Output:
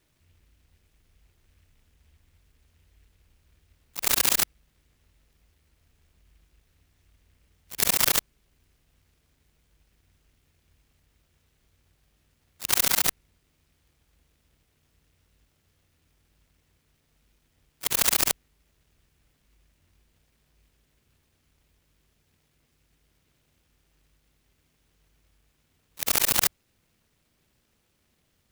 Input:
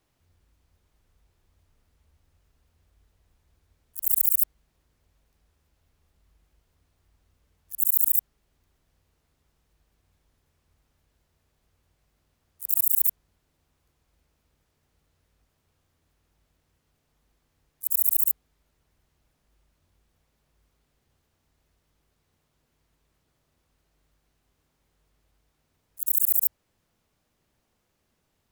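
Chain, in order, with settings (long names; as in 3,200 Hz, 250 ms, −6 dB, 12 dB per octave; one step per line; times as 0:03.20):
harmonic generator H 7 −14 dB, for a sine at −1 dBFS
sine wavefolder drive 11 dB, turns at −1 dBFS
short delay modulated by noise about 2,200 Hz, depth 0.3 ms
level −3 dB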